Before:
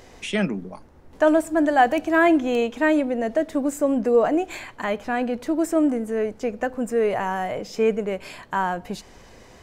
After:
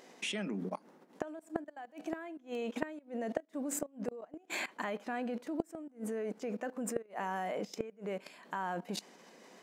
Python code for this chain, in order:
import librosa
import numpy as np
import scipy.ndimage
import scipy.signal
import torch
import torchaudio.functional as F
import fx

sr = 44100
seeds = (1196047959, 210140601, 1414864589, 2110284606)

y = fx.level_steps(x, sr, step_db=19)
y = fx.brickwall_highpass(y, sr, low_hz=160.0)
y = fx.gate_flip(y, sr, shuts_db=-22.0, range_db=-27)
y = F.gain(torch.from_numpy(y), 1.5).numpy()